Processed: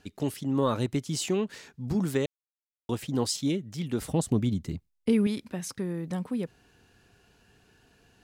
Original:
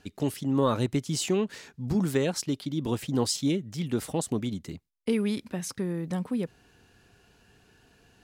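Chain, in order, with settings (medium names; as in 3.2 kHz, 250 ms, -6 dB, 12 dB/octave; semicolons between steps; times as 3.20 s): 2.26–2.89 s: mute; 4.00–5.27 s: bass shelf 200 Hz +12 dB; trim -1.5 dB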